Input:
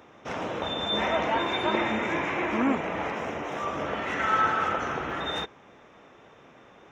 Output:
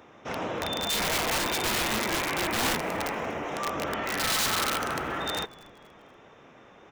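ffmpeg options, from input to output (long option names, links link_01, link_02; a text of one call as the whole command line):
ffmpeg -i in.wav -filter_complex "[0:a]aeval=exprs='(mod(11.9*val(0)+1,2)-1)/11.9':channel_layout=same,asplit=4[link_01][link_02][link_03][link_04];[link_02]adelay=239,afreqshift=-140,volume=-21dB[link_05];[link_03]adelay=478,afreqshift=-280,volume=-28.3dB[link_06];[link_04]adelay=717,afreqshift=-420,volume=-35.7dB[link_07];[link_01][link_05][link_06][link_07]amix=inputs=4:normalize=0" out.wav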